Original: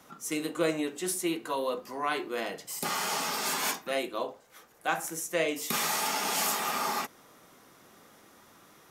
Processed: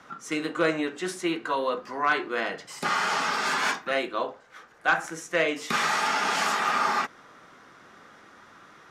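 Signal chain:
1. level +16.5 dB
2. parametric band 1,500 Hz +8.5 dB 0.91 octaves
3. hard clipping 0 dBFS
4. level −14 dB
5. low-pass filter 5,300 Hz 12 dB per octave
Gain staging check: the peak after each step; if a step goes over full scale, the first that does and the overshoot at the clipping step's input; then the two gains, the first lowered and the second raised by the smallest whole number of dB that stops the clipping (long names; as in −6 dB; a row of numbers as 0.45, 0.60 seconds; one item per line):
+1.0, +6.0, 0.0, −14.0, −13.5 dBFS
step 1, 6.0 dB
step 1 +10.5 dB, step 4 −8 dB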